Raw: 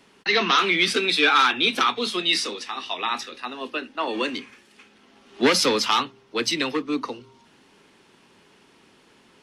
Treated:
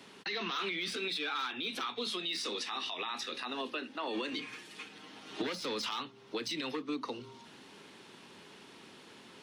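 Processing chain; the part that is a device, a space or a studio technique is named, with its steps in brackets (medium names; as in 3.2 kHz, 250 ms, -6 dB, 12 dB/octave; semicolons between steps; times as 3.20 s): broadcast voice chain (high-pass 90 Hz; de-esser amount 55%; compression 5:1, threshold -34 dBFS, peak gain reduction 18 dB; peaking EQ 3.8 kHz +4 dB 0.42 oct; peak limiter -28.5 dBFS, peak gain reduction 10 dB); 4.31–5.47 s: comb 6.5 ms, depth 89%; trim +1.5 dB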